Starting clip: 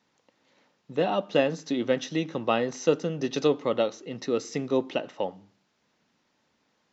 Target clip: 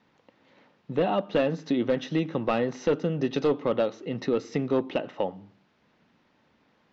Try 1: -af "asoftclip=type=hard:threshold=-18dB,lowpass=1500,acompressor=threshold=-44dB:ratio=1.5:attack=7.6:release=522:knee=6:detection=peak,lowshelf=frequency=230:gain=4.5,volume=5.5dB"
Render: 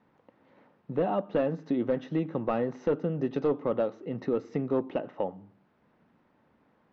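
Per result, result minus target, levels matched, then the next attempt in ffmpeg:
4,000 Hz band −10.5 dB; downward compressor: peak gain reduction +2.5 dB
-af "asoftclip=type=hard:threshold=-18dB,lowpass=3300,acompressor=threshold=-44dB:ratio=1.5:attack=7.6:release=522:knee=6:detection=peak,lowshelf=frequency=230:gain=4.5,volume=5.5dB"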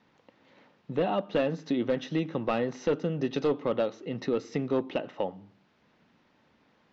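downward compressor: peak gain reduction +2.5 dB
-af "asoftclip=type=hard:threshold=-18dB,lowpass=3300,acompressor=threshold=-36dB:ratio=1.5:attack=7.6:release=522:knee=6:detection=peak,lowshelf=frequency=230:gain=4.5,volume=5.5dB"

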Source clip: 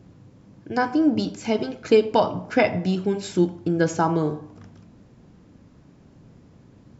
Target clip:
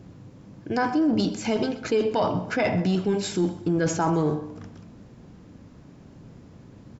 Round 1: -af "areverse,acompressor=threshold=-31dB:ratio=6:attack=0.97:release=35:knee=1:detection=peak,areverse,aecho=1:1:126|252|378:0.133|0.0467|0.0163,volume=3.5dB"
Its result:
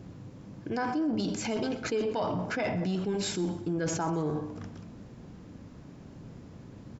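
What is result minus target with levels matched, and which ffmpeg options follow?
downward compressor: peak gain reduction +7.5 dB
-af "areverse,acompressor=threshold=-22dB:ratio=6:attack=0.97:release=35:knee=1:detection=peak,areverse,aecho=1:1:126|252|378:0.133|0.0467|0.0163,volume=3.5dB"

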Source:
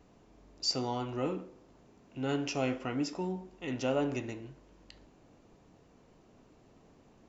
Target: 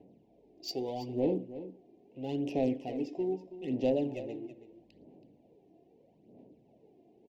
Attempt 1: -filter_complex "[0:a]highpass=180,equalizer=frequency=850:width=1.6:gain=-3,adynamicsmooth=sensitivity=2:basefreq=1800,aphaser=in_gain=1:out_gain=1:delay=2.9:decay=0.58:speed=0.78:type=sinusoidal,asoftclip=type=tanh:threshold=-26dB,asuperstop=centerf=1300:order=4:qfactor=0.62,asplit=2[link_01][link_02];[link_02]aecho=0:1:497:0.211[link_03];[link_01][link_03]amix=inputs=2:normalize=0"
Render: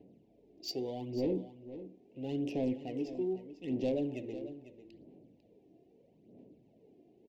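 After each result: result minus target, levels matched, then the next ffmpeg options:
echo 171 ms late; 1,000 Hz band −4.0 dB; soft clipping: distortion +5 dB
-filter_complex "[0:a]highpass=180,equalizer=frequency=850:width=1.6:gain=-3,adynamicsmooth=sensitivity=2:basefreq=1800,aphaser=in_gain=1:out_gain=1:delay=2.9:decay=0.58:speed=0.78:type=sinusoidal,asoftclip=type=tanh:threshold=-26dB,asuperstop=centerf=1300:order=4:qfactor=0.62,asplit=2[link_01][link_02];[link_02]aecho=0:1:326:0.211[link_03];[link_01][link_03]amix=inputs=2:normalize=0"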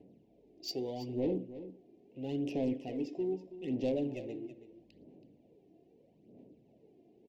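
1,000 Hz band −4.0 dB; soft clipping: distortion +5 dB
-filter_complex "[0:a]highpass=180,equalizer=frequency=850:width=1.6:gain=3.5,adynamicsmooth=sensitivity=2:basefreq=1800,aphaser=in_gain=1:out_gain=1:delay=2.9:decay=0.58:speed=0.78:type=sinusoidal,asoftclip=type=tanh:threshold=-26dB,asuperstop=centerf=1300:order=4:qfactor=0.62,asplit=2[link_01][link_02];[link_02]aecho=0:1:326:0.211[link_03];[link_01][link_03]amix=inputs=2:normalize=0"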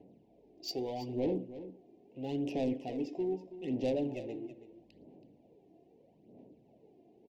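soft clipping: distortion +7 dB
-filter_complex "[0:a]highpass=180,equalizer=frequency=850:width=1.6:gain=3.5,adynamicsmooth=sensitivity=2:basefreq=1800,aphaser=in_gain=1:out_gain=1:delay=2.9:decay=0.58:speed=0.78:type=sinusoidal,asoftclip=type=tanh:threshold=-19dB,asuperstop=centerf=1300:order=4:qfactor=0.62,asplit=2[link_01][link_02];[link_02]aecho=0:1:326:0.211[link_03];[link_01][link_03]amix=inputs=2:normalize=0"

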